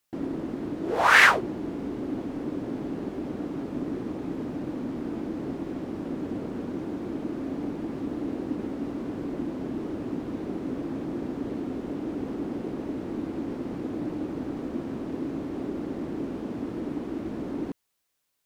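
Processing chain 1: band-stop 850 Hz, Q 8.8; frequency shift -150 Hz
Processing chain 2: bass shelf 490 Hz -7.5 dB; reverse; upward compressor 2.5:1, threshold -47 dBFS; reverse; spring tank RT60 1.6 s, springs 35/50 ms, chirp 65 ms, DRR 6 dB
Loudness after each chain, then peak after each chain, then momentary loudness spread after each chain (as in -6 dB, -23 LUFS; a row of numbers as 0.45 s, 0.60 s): -30.5 LUFS, -31.0 LUFS; -2.5 dBFS, -3.5 dBFS; 2 LU, 4 LU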